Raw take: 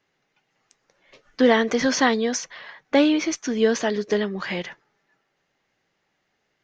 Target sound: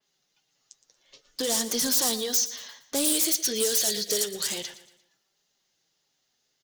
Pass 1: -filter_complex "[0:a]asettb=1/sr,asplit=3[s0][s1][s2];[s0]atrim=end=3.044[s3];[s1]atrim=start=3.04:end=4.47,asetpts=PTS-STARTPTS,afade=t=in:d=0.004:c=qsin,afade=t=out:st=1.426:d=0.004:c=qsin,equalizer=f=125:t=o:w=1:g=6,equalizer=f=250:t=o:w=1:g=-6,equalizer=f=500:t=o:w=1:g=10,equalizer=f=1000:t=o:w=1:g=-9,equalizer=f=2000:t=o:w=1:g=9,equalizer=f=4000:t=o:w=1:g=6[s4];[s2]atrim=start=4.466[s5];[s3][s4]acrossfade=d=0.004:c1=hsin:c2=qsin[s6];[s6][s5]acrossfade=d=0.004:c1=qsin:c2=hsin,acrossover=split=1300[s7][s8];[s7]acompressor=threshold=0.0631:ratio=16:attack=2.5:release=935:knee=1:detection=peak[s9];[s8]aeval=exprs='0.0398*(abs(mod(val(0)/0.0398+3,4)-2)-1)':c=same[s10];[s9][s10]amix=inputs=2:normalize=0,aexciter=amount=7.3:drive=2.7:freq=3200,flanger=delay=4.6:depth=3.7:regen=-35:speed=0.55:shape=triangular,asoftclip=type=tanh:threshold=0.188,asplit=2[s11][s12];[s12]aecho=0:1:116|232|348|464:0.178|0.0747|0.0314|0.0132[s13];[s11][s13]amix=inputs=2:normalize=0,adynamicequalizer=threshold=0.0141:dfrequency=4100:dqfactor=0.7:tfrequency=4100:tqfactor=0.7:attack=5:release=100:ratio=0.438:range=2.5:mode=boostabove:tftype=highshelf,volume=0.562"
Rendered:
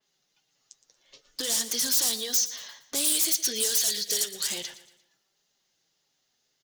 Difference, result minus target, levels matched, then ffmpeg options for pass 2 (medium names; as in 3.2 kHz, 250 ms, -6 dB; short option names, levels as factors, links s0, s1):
compression: peak gain reduction +10 dB
-filter_complex "[0:a]asettb=1/sr,asplit=3[s0][s1][s2];[s0]atrim=end=3.044[s3];[s1]atrim=start=3.04:end=4.47,asetpts=PTS-STARTPTS,afade=t=in:d=0.004:c=qsin,afade=t=out:st=1.426:d=0.004:c=qsin,equalizer=f=125:t=o:w=1:g=6,equalizer=f=250:t=o:w=1:g=-6,equalizer=f=500:t=o:w=1:g=10,equalizer=f=1000:t=o:w=1:g=-9,equalizer=f=2000:t=o:w=1:g=9,equalizer=f=4000:t=o:w=1:g=6[s4];[s2]atrim=start=4.466[s5];[s3][s4]acrossfade=d=0.004:c1=hsin:c2=qsin[s6];[s6][s5]acrossfade=d=0.004:c1=qsin:c2=hsin,acrossover=split=1300[s7][s8];[s7]acompressor=threshold=0.211:ratio=16:attack=2.5:release=935:knee=1:detection=peak[s9];[s8]aeval=exprs='0.0398*(abs(mod(val(0)/0.0398+3,4)-2)-1)':c=same[s10];[s9][s10]amix=inputs=2:normalize=0,aexciter=amount=7.3:drive=2.7:freq=3200,flanger=delay=4.6:depth=3.7:regen=-35:speed=0.55:shape=triangular,asoftclip=type=tanh:threshold=0.188,asplit=2[s11][s12];[s12]aecho=0:1:116|232|348|464:0.178|0.0747|0.0314|0.0132[s13];[s11][s13]amix=inputs=2:normalize=0,adynamicequalizer=threshold=0.0141:dfrequency=4100:dqfactor=0.7:tfrequency=4100:tqfactor=0.7:attack=5:release=100:ratio=0.438:range=2.5:mode=boostabove:tftype=highshelf,volume=0.562"